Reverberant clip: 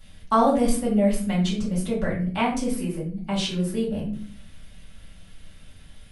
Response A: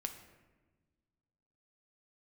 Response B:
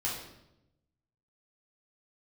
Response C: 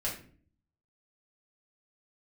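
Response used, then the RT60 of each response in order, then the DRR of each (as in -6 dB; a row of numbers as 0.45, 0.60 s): C; 1.3, 0.90, 0.45 s; 5.0, -6.0, -6.5 dB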